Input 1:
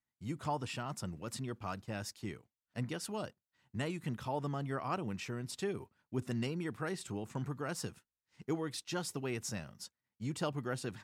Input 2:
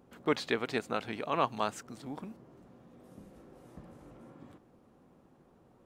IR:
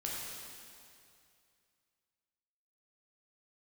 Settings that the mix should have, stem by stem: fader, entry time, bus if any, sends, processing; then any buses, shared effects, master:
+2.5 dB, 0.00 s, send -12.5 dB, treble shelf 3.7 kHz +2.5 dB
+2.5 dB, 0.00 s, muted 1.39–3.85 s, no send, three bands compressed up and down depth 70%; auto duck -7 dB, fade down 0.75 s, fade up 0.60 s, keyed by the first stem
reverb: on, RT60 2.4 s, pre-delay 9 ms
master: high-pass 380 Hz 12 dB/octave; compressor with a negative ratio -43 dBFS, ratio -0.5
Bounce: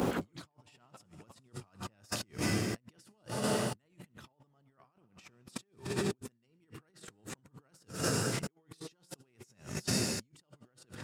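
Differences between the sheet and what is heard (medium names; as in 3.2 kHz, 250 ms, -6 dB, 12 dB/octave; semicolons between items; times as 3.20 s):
stem 1 +2.5 dB -> +13.0 dB; master: missing high-pass 380 Hz 12 dB/octave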